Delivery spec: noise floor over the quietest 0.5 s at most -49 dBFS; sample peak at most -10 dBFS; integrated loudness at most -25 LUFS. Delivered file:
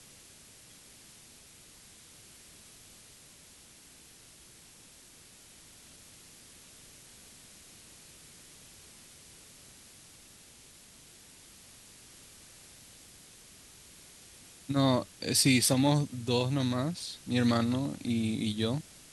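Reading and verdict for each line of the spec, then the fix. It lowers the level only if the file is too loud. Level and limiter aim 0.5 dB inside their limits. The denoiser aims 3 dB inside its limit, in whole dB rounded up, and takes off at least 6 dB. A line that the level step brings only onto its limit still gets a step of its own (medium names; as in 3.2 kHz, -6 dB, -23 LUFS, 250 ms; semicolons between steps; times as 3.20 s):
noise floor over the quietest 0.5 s -55 dBFS: pass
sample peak -11.5 dBFS: pass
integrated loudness -29.0 LUFS: pass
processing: none needed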